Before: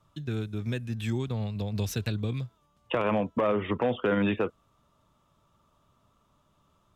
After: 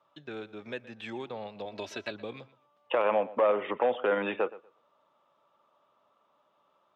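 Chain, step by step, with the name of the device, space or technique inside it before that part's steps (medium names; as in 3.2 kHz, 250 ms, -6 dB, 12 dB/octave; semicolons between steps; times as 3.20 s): tin-can telephone (band-pass 440–3200 Hz; small resonant body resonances 560/800 Hz, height 6 dB, ringing for 25 ms); 1.65–2.11 s: comb 3.1 ms, depth 69%; filtered feedback delay 120 ms, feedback 19%, low-pass 4 kHz, level -18 dB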